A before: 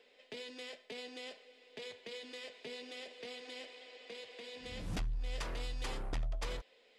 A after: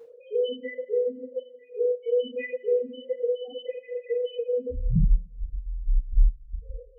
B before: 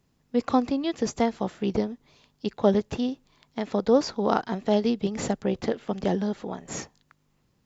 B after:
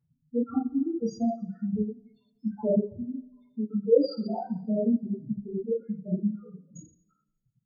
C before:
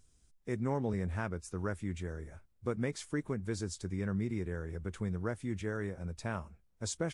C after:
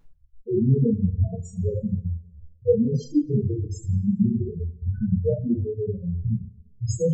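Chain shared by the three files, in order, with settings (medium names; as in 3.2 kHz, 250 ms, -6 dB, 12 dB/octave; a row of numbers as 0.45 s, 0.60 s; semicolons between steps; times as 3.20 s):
loudest bins only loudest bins 2; two-slope reverb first 0.72 s, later 1.8 s, from -22 dB, DRR -8.5 dB; reverb removal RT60 1.2 s; peak normalisation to -9 dBFS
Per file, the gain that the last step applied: +17.0 dB, -5.5 dB, +11.5 dB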